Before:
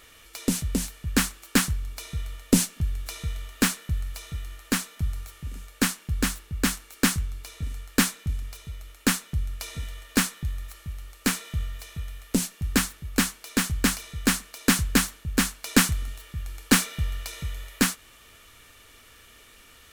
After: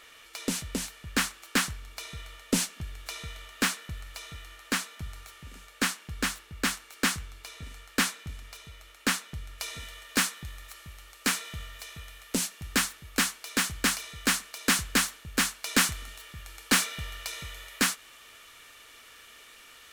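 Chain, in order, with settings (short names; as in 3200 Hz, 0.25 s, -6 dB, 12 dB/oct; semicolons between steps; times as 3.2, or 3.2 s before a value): overdrive pedal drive 15 dB, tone 4400 Hz, clips at -3 dBFS, from 9.58 s tone 7900 Hz; gain -7.5 dB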